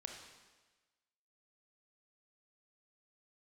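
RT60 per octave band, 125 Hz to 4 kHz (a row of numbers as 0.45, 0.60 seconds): 1.2, 1.2, 1.3, 1.3, 1.3, 1.2 seconds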